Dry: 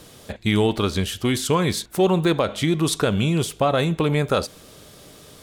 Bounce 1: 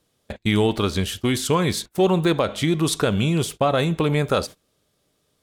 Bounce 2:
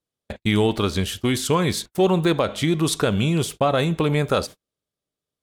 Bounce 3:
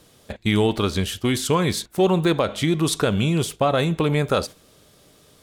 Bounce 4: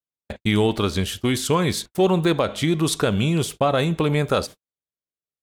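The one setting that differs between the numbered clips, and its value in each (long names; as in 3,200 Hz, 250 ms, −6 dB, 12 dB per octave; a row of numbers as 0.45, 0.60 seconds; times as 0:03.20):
noise gate, range: −23, −42, −8, −58 decibels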